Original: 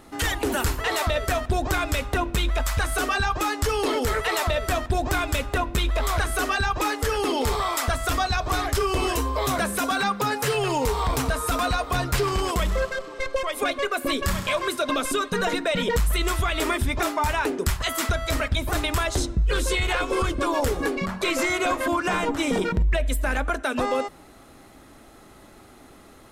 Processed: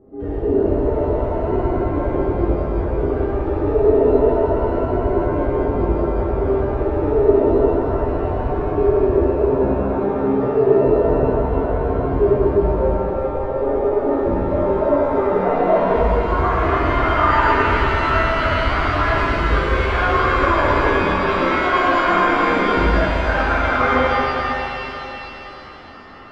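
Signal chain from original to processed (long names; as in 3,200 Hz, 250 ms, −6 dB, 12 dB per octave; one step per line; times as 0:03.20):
low-pass filter sweep 420 Hz → 1,300 Hz, 0:13.99–0:17.08
reverb with rising layers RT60 3.3 s, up +7 semitones, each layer −8 dB, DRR −11.5 dB
level −6.5 dB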